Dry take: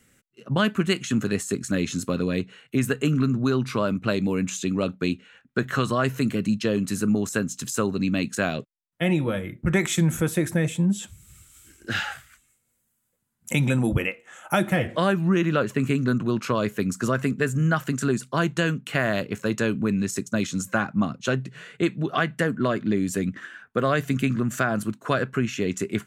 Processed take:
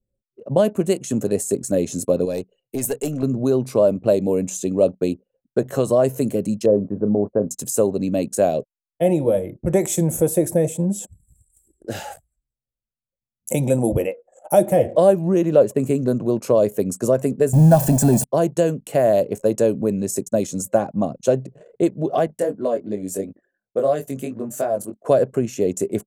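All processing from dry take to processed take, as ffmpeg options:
-filter_complex "[0:a]asettb=1/sr,asplit=3[s0][s1][s2];[s0]atrim=end=2.254[s3];[s1]atrim=start=2.25:end=3.23,asetpts=PTS-STARTPTS,afade=t=in:d=0.004:c=qsin,afade=t=out:st=0.976:d=0.004:c=qsin,tiltshelf=f=910:g=-5,aeval=exprs='(tanh(7.08*val(0)+0.35)-tanh(0.35))/7.08':c=same[s4];[s2]atrim=start=3.226[s5];[s3][s4]acrossfade=d=0.004:c1=hsin:c2=qsin[s6];[s6][s5]acrossfade=d=0.004:c1=qsin:c2=hsin,asettb=1/sr,asplit=3[s7][s8][s9];[s7]atrim=end=6.664[s10];[s8]atrim=start=6.66:end=7.51,asetpts=PTS-STARTPTS,afade=t=in:d=0.004:c=qsin,afade=t=out:st=0.846:d=0.004:c=qsin,lowpass=f=1300:w=0.5412,lowpass=f=1300:w=1.3066,asplit=2[s11][s12];[s12]adelay=29,volume=0.224[s13];[s11][s13]amix=inputs=2:normalize=0,atrim=end_sample=37485[s14];[s9]atrim=start=7.506[s15];[s10][s14]acrossfade=d=0.004:c1=hsin:c2=qsin[s16];[s16][s15]acrossfade=d=0.004:c1=qsin:c2=hsin,asettb=1/sr,asplit=3[s17][s18][s19];[s17]atrim=end=17.534[s20];[s18]atrim=start=17.53:end=18.24,asetpts=PTS-STARTPTS,afade=t=in:d=0.004:c=qsin,afade=t=out:st=0.706:d=0.004:c=qsin,aeval=exprs='val(0)+0.5*0.0447*sgn(val(0))':c=same,lowshelf=f=430:g=6.5,aecho=1:1:1.2:0.63,atrim=end_sample=31311[s21];[s19]atrim=start=18.236[s22];[s20][s21]acrossfade=d=0.004:c1=hsin:c2=qsin[s23];[s23][s22]acrossfade=d=0.004:c1=qsin:c2=hsin,asettb=1/sr,asplit=3[s24][s25][s26];[s24]atrim=end=22.274[s27];[s25]atrim=start=22.27:end=25.05,asetpts=PTS-STARTPTS,afade=t=in:d=0.004:c=qsin,afade=t=out:st=2.776:d=0.004:c=qsin,lowshelf=f=240:g=-8,flanger=delay=19:depth=2.8:speed=2.9[s28];[s26]atrim=start=25.046[s29];[s27][s28]acrossfade=d=0.004:c1=hsin:c2=qsin[s30];[s30][s29]acrossfade=d=0.004:c1=qsin:c2=hsin,firequalizer=gain_entry='entry(210,0);entry(570,14);entry(1300,-13);entry(3400,-4);entry(9100,9)':delay=0.05:min_phase=1,anlmdn=0.251,equalizer=f=3500:t=o:w=0.62:g=-5"

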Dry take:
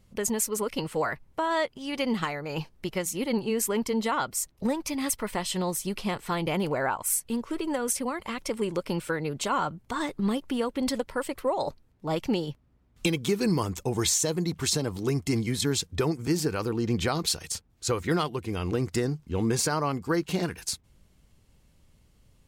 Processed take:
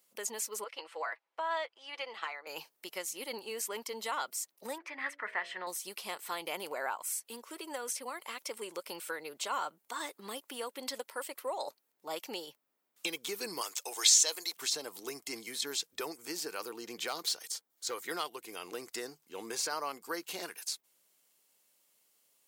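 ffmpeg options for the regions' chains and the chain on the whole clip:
-filter_complex "[0:a]asettb=1/sr,asplit=3[s0][s1][s2];[s0]atrim=end=0.644[s3];[s1]atrim=start=0.64:end=2.47,asetpts=PTS-STARTPTS,afade=t=in:d=0.004:c=qsin,afade=t=out:st=1.826:d=0.004:c=qsin,highpass=550,lowpass=3100,aecho=1:1:6:0.39,atrim=end_sample=80703[s4];[s2]atrim=start=2.466[s5];[s3][s4]acrossfade=d=0.004:c1=hsin:c2=qsin[s6];[s6][s5]acrossfade=d=0.004:c1=qsin:c2=hsin,asettb=1/sr,asplit=3[s7][s8][s9];[s7]atrim=end=4.784[s10];[s8]atrim=start=4.78:end=5.67,asetpts=PTS-STARTPTS,afade=t=in:d=0.004:c=qsin,afade=t=out:st=0.886:d=0.004:c=qsin,lowpass=f=1800:t=q:w=4.5,lowshelf=f=430:g=-5.5,bandreject=f=57.48:t=h:w=4,bandreject=f=114.96:t=h:w=4,bandreject=f=172.44:t=h:w=4,bandreject=f=229.92:t=h:w=4,bandreject=f=287.4:t=h:w=4,bandreject=f=344.88:t=h:w=4,bandreject=f=402.36:t=h:w=4,bandreject=f=459.84:t=h:w=4,bandreject=f=517.32:t=h:w=4,bandreject=f=574.8:t=h:w=4,bandreject=f=632.28:t=h:w=4,bandreject=f=689.76:t=h:w=4[s11];[s9]atrim=start=5.666[s12];[s10][s11]acrossfade=d=0.004:c1=hsin:c2=qsin[s13];[s13][s12]acrossfade=d=0.004:c1=qsin:c2=hsin,asettb=1/sr,asplit=3[s14][s15][s16];[s14]atrim=end=13.614[s17];[s15]atrim=start=13.61:end=14.57,asetpts=PTS-STARTPTS,afade=t=in:d=0.004:c=qsin,afade=t=out:st=0.956:d=0.004:c=qsin,highpass=480,highshelf=f=2100:g=11[s18];[s16]atrim=start=14.566[s19];[s17][s18]acrossfade=d=0.004:c1=hsin:c2=qsin[s20];[s20][s19]acrossfade=d=0.004:c1=qsin:c2=hsin,asettb=1/sr,asplit=3[s21][s22][s23];[s21]atrim=end=17.074[s24];[s22]atrim=start=17.07:end=18.05,asetpts=PTS-STARTPTS,afade=t=in:d=0.004:c=qsin,afade=t=out:st=0.976:d=0.004:c=qsin,bandreject=f=2600:w=8.5,volume=10,asoftclip=hard,volume=0.1[s25];[s23]atrim=start=18.046[s26];[s24][s25]acrossfade=d=0.004:c1=hsin:c2=qsin[s27];[s27][s26]acrossfade=d=0.004:c1=qsin:c2=hsin,acrossover=split=5900[s28][s29];[s29]acompressor=threshold=0.00501:ratio=4:attack=1:release=60[s30];[s28][s30]amix=inputs=2:normalize=0,highpass=430,aemphasis=mode=production:type=bsi,volume=0.422"

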